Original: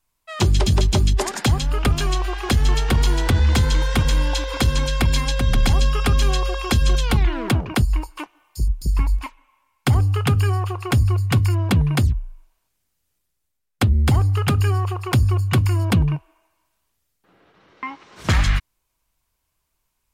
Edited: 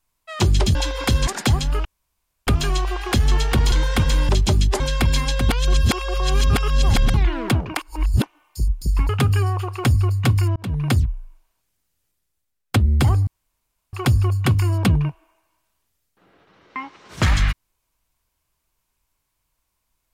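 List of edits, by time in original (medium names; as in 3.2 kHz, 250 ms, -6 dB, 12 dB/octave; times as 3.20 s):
0.75–1.26 s: swap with 4.28–4.80 s
1.84 s: insert room tone 0.62 s
3.09–3.71 s: delete
5.49–7.14 s: reverse
7.77–8.22 s: reverse
9.09–10.16 s: delete
11.63–11.99 s: fade in
14.34–15.00 s: room tone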